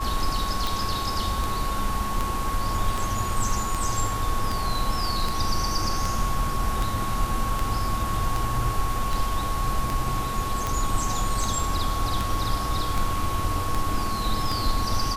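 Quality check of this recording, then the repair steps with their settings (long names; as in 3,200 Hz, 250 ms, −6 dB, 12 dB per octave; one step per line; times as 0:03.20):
scratch tick 78 rpm
whistle 1,100 Hz −29 dBFS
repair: click removal
notch filter 1,100 Hz, Q 30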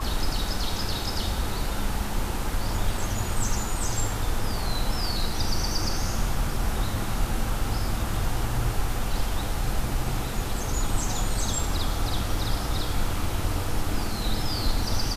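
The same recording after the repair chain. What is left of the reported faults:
none of them is left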